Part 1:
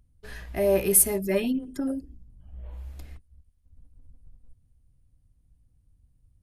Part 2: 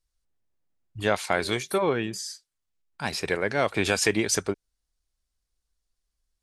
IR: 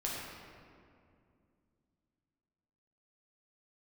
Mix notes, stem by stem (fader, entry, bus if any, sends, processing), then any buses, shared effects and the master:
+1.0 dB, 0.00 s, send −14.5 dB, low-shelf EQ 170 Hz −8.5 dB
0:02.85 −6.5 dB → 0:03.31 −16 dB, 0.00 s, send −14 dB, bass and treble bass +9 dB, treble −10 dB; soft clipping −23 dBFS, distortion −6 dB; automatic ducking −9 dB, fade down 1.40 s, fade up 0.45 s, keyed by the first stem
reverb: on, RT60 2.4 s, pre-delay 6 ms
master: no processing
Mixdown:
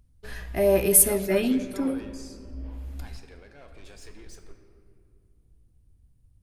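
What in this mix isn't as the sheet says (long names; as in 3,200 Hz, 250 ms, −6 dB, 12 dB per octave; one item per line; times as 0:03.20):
stem 1: missing low-shelf EQ 170 Hz −8.5 dB
stem 2: missing bass and treble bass +9 dB, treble −10 dB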